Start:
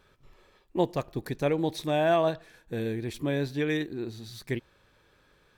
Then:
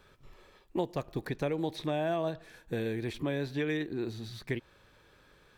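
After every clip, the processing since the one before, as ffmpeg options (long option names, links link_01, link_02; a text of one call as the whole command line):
ffmpeg -i in.wav -filter_complex "[0:a]acrossover=split=470|3900[link_01][link_02][link_03];[link_01]acompressor=threshold=-35dB:ratio=4[link_04];[link_02]acompressor=threshold=-37dB:ratio=4[link_05];[link_03]acompressor=threshold=-59dB:ratio=4[link_06];[link_04][link_05][link_06]amix=inputs=3:normalize=0,volume=2dB" out.wav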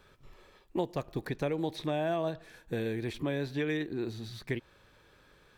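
ffmpeg -i in.wav -af anull out.wav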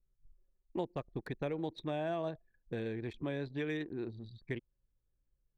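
ffmpeg -i in.wav -af "anlmdn=0.398,volume=-5dB" out.wav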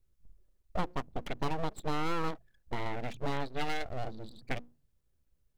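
ffmpeg -i in.wav -af "bandreject=frequency=60:width_type=h:width=6,bandreject=frequency=120:width_type=h:width=6,bandreject=frequency=180:width_type=h:width=6,aeval=exprs='abs(val(0))':channel_layout=same,volume=6.5dB" out.wav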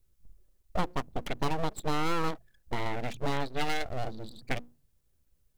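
ffmpeg -i in.wav -af "highshelf=frequency=5500:gain=6,volume=3dB" out.wav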